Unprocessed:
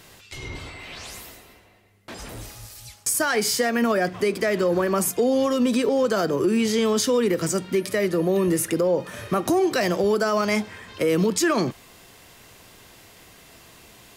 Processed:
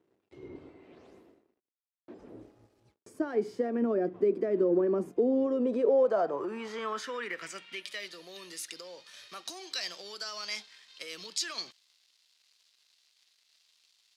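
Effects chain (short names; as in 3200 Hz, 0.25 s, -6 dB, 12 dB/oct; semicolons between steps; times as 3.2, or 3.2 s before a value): crossover distortion -47 dBFS; band-pass sweep 340 Hz -> 4300 Hz, 5.39–8.2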